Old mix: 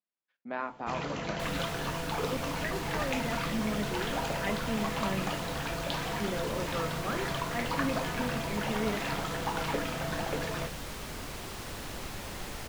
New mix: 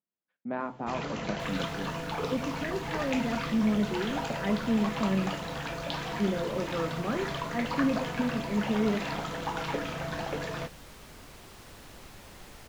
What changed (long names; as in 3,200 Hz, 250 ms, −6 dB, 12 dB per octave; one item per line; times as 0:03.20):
speech: add spectral tilt −3.5 dB per octave
second sound −9.0 dB